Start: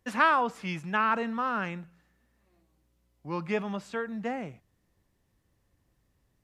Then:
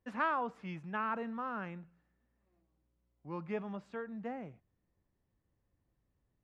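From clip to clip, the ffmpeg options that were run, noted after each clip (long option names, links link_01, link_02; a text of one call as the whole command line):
ffmpeg -i in.wav -af "lowpass=frequency=1400:poles=1,volume=-7.5dB" out.wav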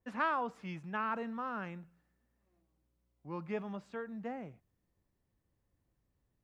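ffmpeg -i in.wav -af "adynamicequalizer=threshold=0.002:dfrequency=3800:dqfactor=0.7:tfrequency=3800:tqfactor=0.7:attack=5:release=100:ratio=0.375:range=3.5:mode=boostabove:tftype=highshelf" out.wav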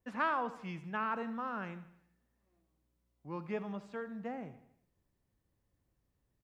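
ffmpeg -i in.wav -af "aecho=1:1:79|158|237|316|395:0.178|0.0907|0.0463|0.0236|0.012" out.wav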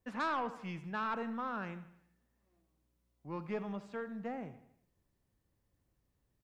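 ffmpeg -i in.wav -af "aeval=exprs='(tanh(28.2*val(0)+0.2)-tanh(0.2))/28.2':channel_layout=same,volume=1dB" out.wav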